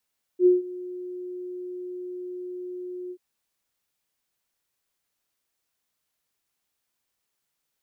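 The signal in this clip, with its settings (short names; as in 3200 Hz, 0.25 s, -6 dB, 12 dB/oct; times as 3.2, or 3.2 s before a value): ADSR sine 361 Hz, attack 70 ms, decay 0.159 s, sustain -20.5 dB, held 2.72 s, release 63 ms -12 dBFS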